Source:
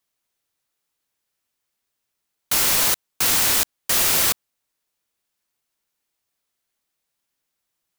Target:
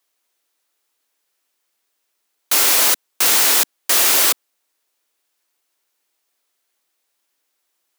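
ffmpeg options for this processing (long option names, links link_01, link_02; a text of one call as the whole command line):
ffmpeg -i in.wav -filter_complex "[0:a]asplit=2[link_01][link_02];[link_02]aeval=exprs='(mod(6.31*val(0)+1,2)-1)/6.31':channel_layout=same,volume=-7dB[link_03];[link_01][link_03]amix=inputs=2:normalize=0,highpass=frequency=280:width=0.5412,highpass=frequency=280:width=1.3066,volume=3.5dB" out.wav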